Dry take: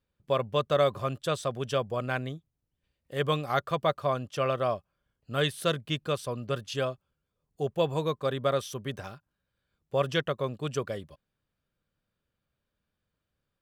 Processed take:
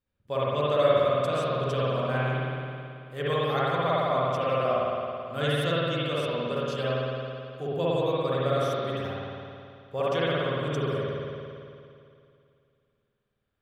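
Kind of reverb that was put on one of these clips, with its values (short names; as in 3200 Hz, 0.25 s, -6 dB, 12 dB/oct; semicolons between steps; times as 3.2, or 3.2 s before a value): spring tank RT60 2.5 s, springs 54 ms, chirp 40 ms, DRR -8.5 dB; gain -6 dB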